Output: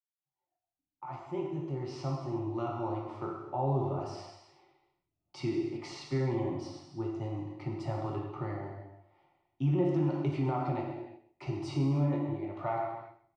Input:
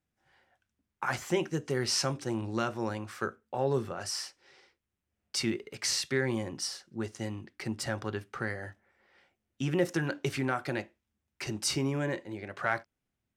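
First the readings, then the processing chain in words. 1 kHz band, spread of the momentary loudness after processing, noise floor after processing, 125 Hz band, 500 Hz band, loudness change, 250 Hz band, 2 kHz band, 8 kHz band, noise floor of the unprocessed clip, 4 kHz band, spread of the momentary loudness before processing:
+0.5 dB, 15 LU, below −85 dBFS, +4.0 dB, −2.0 dB, −1.5 dB, +1.0 dB, −14.5 dB, −21.5 dB, −85 dBFS, −15.5 dB, 10 LU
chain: fade in at the beginning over 3.38 s
low-pass filter 1,600 Hz 12 dB per octave
phaser with its sweep stopped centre 320 Hz, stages 8
repeating echo 131 ms, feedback 21%, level −15 dB
reverb whose tail is shaped and stops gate 390 ms falling, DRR −1 dB
in parallel at +2.5 dB: brickwall limiter −25 dBFS, peak gain reduction 8 dB
on the sum: noise reduction from a noise print of the clip's start 9 dB
hum removal 84.57 Hz, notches 39
level −5.5 dB

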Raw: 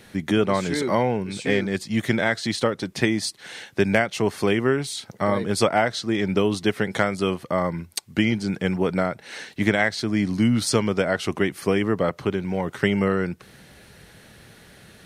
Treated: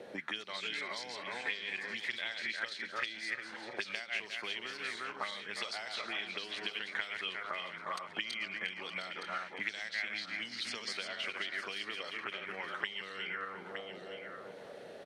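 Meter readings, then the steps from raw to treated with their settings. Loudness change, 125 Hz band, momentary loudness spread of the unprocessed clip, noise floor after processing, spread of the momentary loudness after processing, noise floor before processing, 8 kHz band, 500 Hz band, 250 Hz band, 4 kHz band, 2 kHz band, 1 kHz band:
−15.0 dB, −34.0 dB, 6 LU, −50 dBFS, 4 LU, −50 dBFS, −18.0 dB, −24.0 dB, −29.5 dB, −7.0 dB, −9.0 dB, −15.0 dB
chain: feedback delay that plays each chunk backwards 177 ms, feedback 60%, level −6 dB
envelope filter 510–4,800 Hz, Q 3.2, up, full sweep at −15 dBFS
single-tap delay 916 ms −16 dB
multiband upward and downward compressor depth 70%
level −2.5 dB

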